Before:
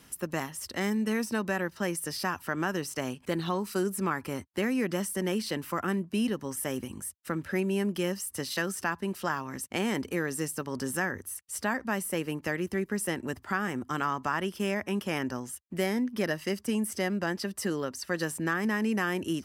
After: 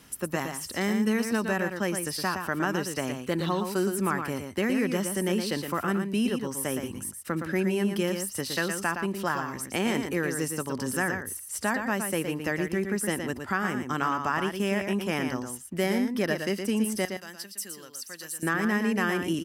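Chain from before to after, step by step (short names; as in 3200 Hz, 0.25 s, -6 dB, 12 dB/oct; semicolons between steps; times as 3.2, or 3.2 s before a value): 17.05–18.43 pre-emphasis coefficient 0.9; echo 0.116 s -6.5 dB; gain +2 dB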